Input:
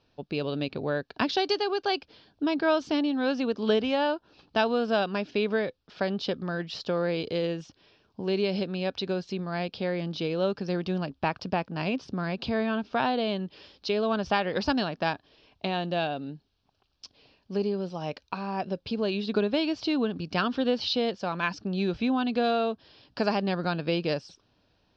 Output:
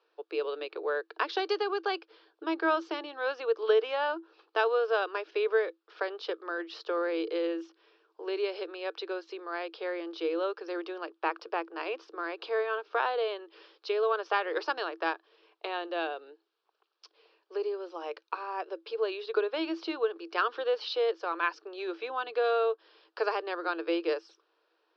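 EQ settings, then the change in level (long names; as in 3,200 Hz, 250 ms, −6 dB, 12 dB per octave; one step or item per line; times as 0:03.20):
Chebyshev high-pass with heavy ripple 320 Hz, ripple 9 dB
high-frequency loss of the air 90 metres
+3.5 dB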